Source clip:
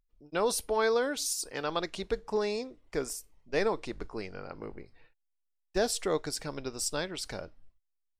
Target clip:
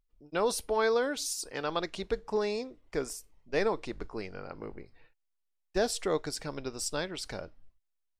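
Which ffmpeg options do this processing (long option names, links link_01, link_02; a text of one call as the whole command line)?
ffmpeg -i in.wav -af "highshelf=frequency=7700:gain=-5" out.wav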